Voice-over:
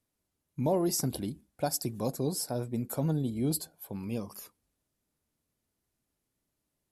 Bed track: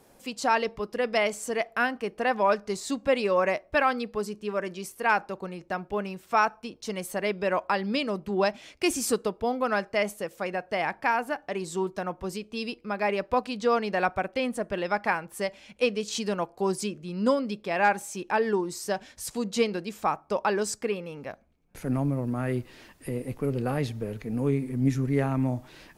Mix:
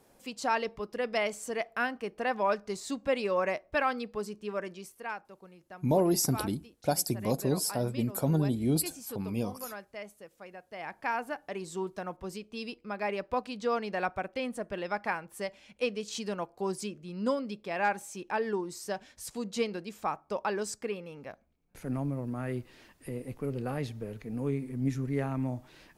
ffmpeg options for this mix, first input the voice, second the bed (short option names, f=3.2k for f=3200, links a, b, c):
-filter_complex "[0:a]adelay=5250,volume=2.5dB[a];[1:a]volume=5.5dB,afade=t=out:st=4.57:d=0.6:silence=0.266073,afade=t=in:st=10.71:d=0.44:silence=0.298538[b];[a][b]amix=inputs=2:normalize=0"